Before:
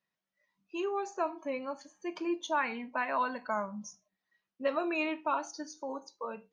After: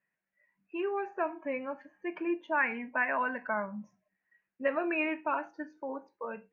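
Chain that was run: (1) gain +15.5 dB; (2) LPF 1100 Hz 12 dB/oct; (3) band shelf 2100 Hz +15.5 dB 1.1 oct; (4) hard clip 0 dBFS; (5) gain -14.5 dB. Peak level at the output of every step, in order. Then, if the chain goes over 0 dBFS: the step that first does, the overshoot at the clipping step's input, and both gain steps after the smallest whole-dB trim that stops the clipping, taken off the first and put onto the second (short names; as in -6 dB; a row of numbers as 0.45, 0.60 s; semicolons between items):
-4.0, -5.5, -2.0, -2.0, -16.5 dBFS; no overload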